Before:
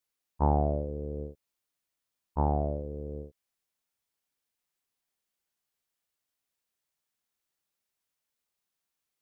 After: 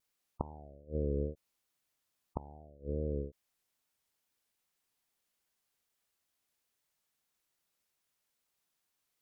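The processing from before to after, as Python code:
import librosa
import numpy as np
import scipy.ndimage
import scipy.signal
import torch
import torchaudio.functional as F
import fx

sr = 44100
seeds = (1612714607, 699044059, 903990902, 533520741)

y = fx.gate_flip(x, sr, shuts_db=-23.0, range_db=-28)
y = fx.vibrato(y, sr, rate_hz=2.4, depth_cents=66.0)
y = fx.spec_gate(y, sr, threshold_db=-25, keep='strong')
y = y * 10.0 ** (3.0 / 20.0)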